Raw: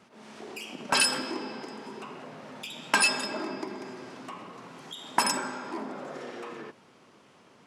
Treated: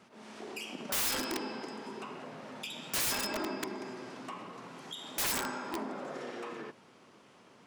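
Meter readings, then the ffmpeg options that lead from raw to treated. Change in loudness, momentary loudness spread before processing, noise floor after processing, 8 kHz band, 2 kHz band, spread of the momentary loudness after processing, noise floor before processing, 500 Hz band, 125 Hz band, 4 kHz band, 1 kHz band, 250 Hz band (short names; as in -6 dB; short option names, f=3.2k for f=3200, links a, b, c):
-6.5 dB, 20 LU, -60 dBFS, -4.5 dB, -9.0 dB, 15 LU, -58 dBFS, -3.0 dB, -2.0 dB, -6.5 dB, -7.5 dB, -3.0 dB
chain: -af "aeval=exprs='(mod(16.8*val(0)+1,2)-1)/16.8':c=same,bandreject=f=50:t=h:w=6,bandreject=f=100:t=h:w=6,bandreject=f=150:t=h:w=6,volume=-1.5dB"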